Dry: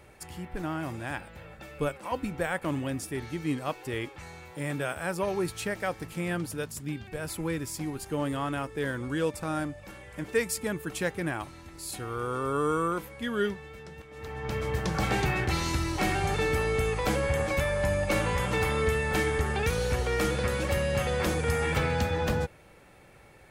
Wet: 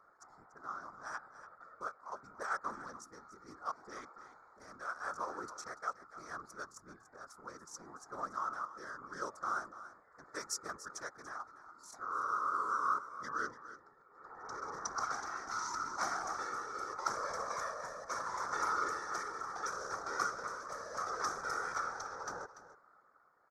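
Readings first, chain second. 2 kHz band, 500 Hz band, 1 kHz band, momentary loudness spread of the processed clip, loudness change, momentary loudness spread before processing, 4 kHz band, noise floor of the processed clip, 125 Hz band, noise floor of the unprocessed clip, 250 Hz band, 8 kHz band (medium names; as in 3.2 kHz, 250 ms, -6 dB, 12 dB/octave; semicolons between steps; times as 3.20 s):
-10.0 dB, -18.5 dB, -3.0 dB, 18 LU, -10.0 dB, 11 LU, -12.5 dB, -65 dBFS, -31.5 dB, -53 dBFS, -23.0 dB, -7.0 dB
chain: local Wiener filter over 15 samples; tremolo 0.75 Hz, depth 47%; two resonant band-passes 2.7 kHz, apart 2.2 oct; whisper effect; delay 289 ms -14 dB; trim +7.5 dB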